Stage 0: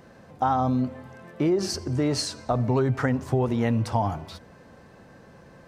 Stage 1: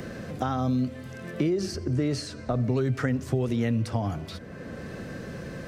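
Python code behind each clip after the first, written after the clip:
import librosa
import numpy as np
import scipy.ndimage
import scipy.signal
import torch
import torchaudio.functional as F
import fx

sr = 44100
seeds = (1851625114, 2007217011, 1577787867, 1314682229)

y = fx.peak_eq(x, sr, hz=890.0, db=-13.0, octaves=0.73)
y = fx.band_squash(y, sr, depth_pct=70)
y = y * librosa.db_to_amplitude(-1.0)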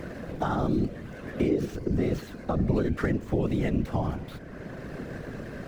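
y = scipy.ndimage.median_filter(x, 9, mode='constant')
y = fx.peak_eq(y, sr, hz=9100.0, db=-3.0, octaves=0.38)
y = fx.whisperise(y, sr, seeds[0])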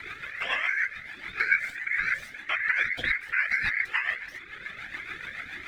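y = x * np.sin(2.0 * np.pi * 1900.0 * np.arange(len(x)) / sr)
y = fx.rotary(y, sr, hz=7.0)
y = fx.comb_cascade(y, sr, direction='rising', hz=1.6)
y = y * librosa.db_to_amplitude(8.5)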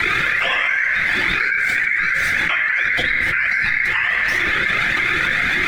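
y = fx.room_shoebox(x, sr, seeds[1], volume_m3=1200.0, walls='mixed', distance_m=0.87)
y = fx.env_flatten(y, sr, amount_pct=100)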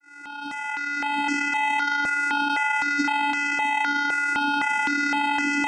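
y = fx.fade_in_head(x, sr, length_s=1.43)
y = fx.vocoder(y, sr, bands=4, carrier='square', carrier_hz=287.0)
y = fx.phaser_held(y, sr, hz=3.9, low_hz=910.0, high_hz=3700.0)
y = y * librosa.db_to_amplitude(-1.0)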